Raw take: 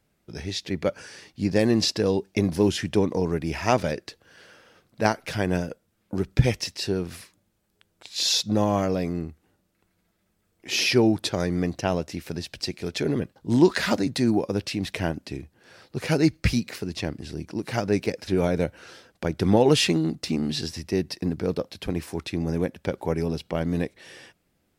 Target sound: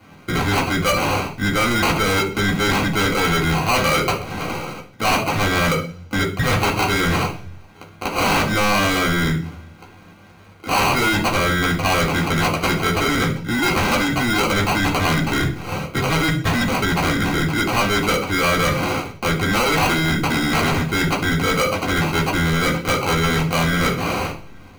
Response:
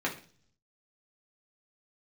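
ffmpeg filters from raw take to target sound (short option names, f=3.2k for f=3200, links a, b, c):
-filter_complex "[0:a]acrusher=samples=25:mix=1:aa=0.000001,areverse,acompressor=threshold=-35dB:ratio=12,areverse[a];[1:a]atrim=start_sample=2205[b];[a][b]afir=irnorm=-1:irlink=0,apsyclip=32.5dB,equalizer=f=310:t=o:w=2.6:g=-10.5,volume=-8dB"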